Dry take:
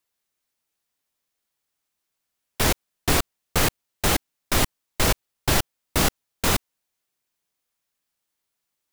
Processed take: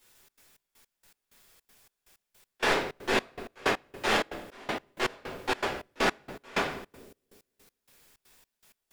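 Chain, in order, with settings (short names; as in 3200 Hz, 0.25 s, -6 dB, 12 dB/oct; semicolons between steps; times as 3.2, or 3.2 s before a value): soft clip -20.5 dBFS, distortion -10 dB; limiter -31 dBFS, peak gain reduction 10.5 dB; BPF 350–2900 Hz; added noise white -71 dBFS; sample leveller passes 3; split-band echo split 480 Hz, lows 0.251 s, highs 86 ms, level -16 dB; shoebox room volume 91 m³, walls mixed, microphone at 2.3 m; step gate "xxx.xx..x..x.." 160 bpm -24 dB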